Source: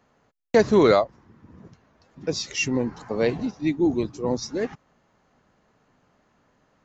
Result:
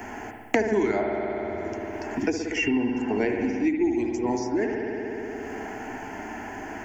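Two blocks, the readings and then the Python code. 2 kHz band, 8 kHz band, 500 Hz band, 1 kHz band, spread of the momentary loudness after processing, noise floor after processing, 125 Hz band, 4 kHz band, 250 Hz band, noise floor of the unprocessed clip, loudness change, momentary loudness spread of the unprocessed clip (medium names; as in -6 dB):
+2.0 dB, no reading, -3.5 dB, -1.0 dB, 12 LU, -38 dBFS, -6.5 dB, -6.0 dB, +0.5 dB, -66 dBFS, -4.0 dB, 13 LU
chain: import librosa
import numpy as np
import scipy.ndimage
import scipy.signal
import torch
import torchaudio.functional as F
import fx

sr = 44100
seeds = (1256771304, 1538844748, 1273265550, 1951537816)

y = fx.fixed_phaser(x, sr, hz=790.0, stages=8)
y = fx.rev_spring(y, sr, rt60_s=1.5, pass_ms=(58,), chirp_ms=35, drr_db=2.5)
y = fx.band_squash(y, sr, depth_pct=100)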